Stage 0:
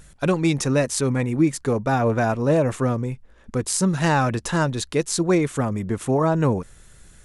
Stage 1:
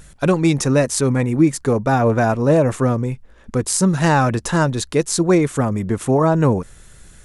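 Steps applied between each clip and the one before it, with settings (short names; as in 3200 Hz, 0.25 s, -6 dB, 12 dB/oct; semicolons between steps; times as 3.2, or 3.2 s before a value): dynamic EQ 3000 Hz, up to -3 dB, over -41 dBFS, Q 0.95; gain +4.5 dB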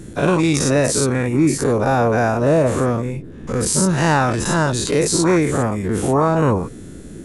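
spectral dilation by 0.12 s; band noise 59–380 Hz -32 dBFS; gain -4 dB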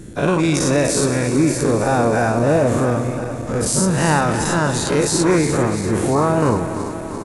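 regenerating reverse delay 0.171 s, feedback 83%, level -11.5 dB; echo 0.245 s -14.5 dB; gain -1 dB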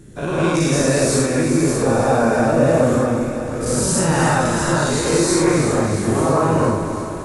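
non-linear reverb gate 0.23 s rising, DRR -7 dB; gain -7.5 dB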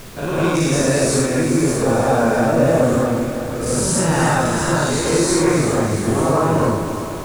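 added noise pink -38 dBFS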